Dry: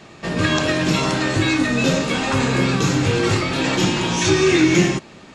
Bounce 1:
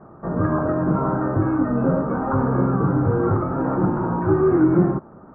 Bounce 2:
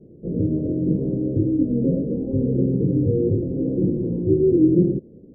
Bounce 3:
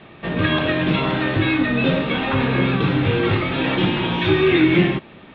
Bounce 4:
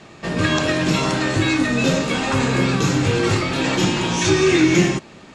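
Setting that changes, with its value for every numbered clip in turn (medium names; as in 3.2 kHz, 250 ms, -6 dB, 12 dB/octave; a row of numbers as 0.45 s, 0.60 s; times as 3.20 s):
Chebyshev low-pass, frequency: 1.4 kHz, 500 Hz, 3.6 kHz, 12 kHz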